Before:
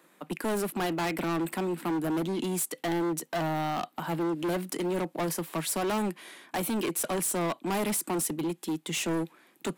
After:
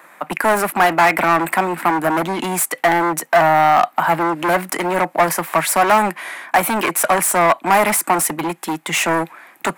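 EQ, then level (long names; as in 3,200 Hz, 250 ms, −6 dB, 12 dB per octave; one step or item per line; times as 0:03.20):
flat-topped bell 1,200 Hz +13 dB 2.3 octaves
high-shelf EQ 5,100 Hz +6.5 dB
+6.5 dB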